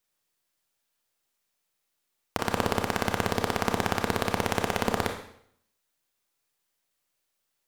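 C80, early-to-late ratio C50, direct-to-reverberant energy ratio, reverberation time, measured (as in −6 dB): 9.5 dB, 6.5 dB, 3.0 dB, 0.65 s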